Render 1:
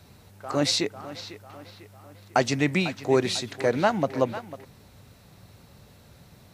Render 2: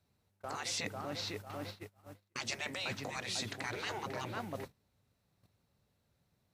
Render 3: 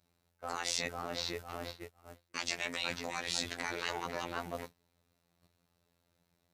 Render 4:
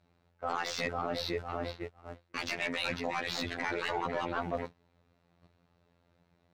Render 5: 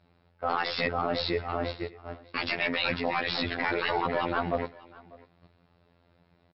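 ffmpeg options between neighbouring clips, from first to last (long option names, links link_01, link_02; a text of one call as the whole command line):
ffmpeg -i in.wav -af "afftfilt=real='re*lt(hypot(re,im),0.141)':imag='im*lt(hypot(re,im),0.141)':win_size=1024:overlap=0.75,agate=range=-28dB:threshold=-45dB:ratio=16:detection=peak,areverse,acompressor=threshold=-41dB:ratio=4,areverse,volume=3.5dB" out.wav
ffmpeg -i in.wav -af "lowshelf=frequency=150:gain=-8.5,afftfilt=real='hypot(re,im)*cos(PI*b)':imag='0':win_size=2048:overlap=0.75,volume=6dB" out.wav
ffmpeg -i in.wav -af "asoftclip=type=tanh:threshold=-28dB,adynamicsmooth=sensitivity=4:basefreq=3200,volume=8dB" out.wav
ffmpeg -i in.wav -af "aecho=1:1:595:0.0794,volume=6dB" -ar 12000 -c:a libmp3lame -b:a 64k out.mp3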